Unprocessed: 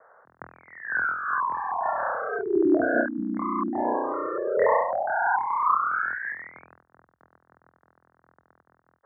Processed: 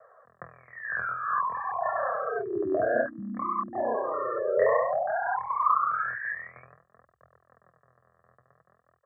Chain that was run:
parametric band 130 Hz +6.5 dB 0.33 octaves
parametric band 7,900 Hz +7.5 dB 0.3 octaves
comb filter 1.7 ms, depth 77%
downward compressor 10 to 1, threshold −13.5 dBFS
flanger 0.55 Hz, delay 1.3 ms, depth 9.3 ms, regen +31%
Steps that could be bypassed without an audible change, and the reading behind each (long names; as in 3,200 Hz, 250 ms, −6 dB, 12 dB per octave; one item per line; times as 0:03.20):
parametric band 7,900 Hz: nothing at its input above 2,200 Hz